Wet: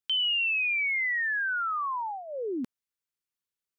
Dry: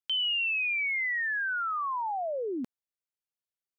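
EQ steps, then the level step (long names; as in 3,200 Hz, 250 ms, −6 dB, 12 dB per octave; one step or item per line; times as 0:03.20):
parametric band 680 Hz −13 dB 0.4 octaves
+2.0 dB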